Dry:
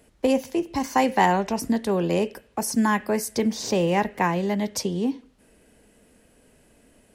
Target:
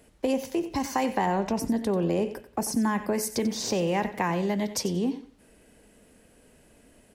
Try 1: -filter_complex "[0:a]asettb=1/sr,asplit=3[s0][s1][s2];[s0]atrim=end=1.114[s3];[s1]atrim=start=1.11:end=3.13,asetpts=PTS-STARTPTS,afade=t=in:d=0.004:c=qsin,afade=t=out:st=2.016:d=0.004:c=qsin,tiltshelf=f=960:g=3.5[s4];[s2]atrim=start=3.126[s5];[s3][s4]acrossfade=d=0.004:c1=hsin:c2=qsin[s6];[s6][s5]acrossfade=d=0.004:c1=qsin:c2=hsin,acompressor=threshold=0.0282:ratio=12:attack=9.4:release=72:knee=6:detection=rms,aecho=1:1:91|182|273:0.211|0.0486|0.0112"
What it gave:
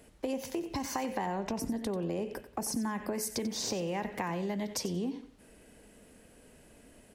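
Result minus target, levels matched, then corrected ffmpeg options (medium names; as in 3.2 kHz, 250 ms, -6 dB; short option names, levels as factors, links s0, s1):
compression: peak gain reduction +8.5 dB
-filter_complex "[0:a]asettb=1/sr,asplit=3[s0][s1][s2];[s0]atrim=end=1.114[s3];[s1]atrim=start=1.11:end=3.13,asetpts=PTS-STARTPTS,afade=t=in:d=0.004:c=qsin,afade=t=out:st=2.016:d=0.004:c=qsin,tiltshelf=f=960:g=3.5[s4];[s2]atrim=start=3.126[s5];[s3][s4]acrossfade=d=0.004:c1=hsin:c2=qsin[s6];[s6][s5]acrossfade=d=0.004:c1=qsin:c2=hsin,acompressor=threshold=0.0841:ratio=12:attack=9.4:release=72:knee=6:detection=rms,aecho=1:1:91|182|273:0.211|0.0486|0.0112"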